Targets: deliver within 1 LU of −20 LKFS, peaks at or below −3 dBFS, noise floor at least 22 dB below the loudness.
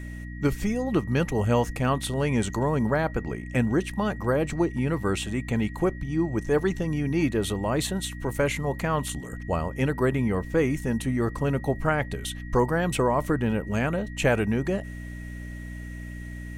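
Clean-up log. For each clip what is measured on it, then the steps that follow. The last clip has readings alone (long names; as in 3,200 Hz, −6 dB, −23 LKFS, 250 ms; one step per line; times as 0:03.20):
mains hum 60 Hz; hum harmonics up to 300 Hz; level of the hum −35 dBFS; interfering tone 1,900 Hz; level of the tone −45 dBFS; integrated loudness −26.5 LKFS; sample peak −10.5 dBFS; target loudness −20.0 LKFS
→ hum removal 60 Hz, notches 5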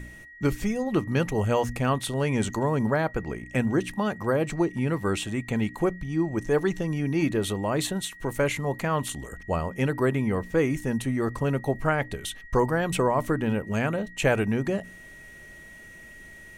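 mains hum none found; interfering tone 1,900 Hz; level of the tone −45 dBFS
→ notch filter 1,900 Hz, Q 30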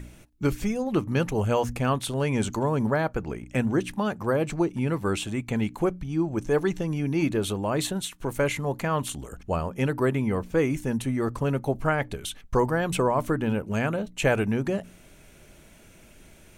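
interfering tone none found; integrated loudness −27.0 LKFS; sample peak −10.5 dBFS; target loudness −20.0 LKFS
→ level +7 dB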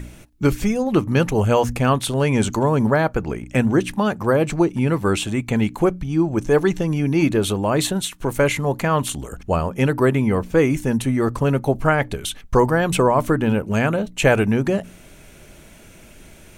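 integrated loudness −20.0 LKFS; sample peak −3.5 dBFS; background noise floor −45 dBFS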